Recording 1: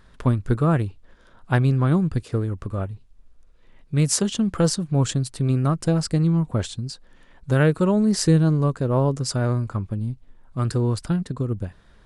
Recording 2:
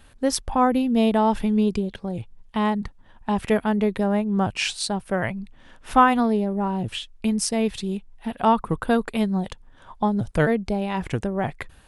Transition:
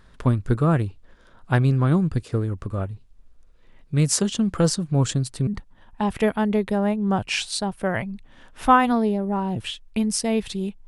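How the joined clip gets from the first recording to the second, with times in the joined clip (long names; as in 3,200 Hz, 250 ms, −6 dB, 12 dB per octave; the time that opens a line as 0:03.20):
recording 1
0:05.47: continue with recording 2 from 0:02.75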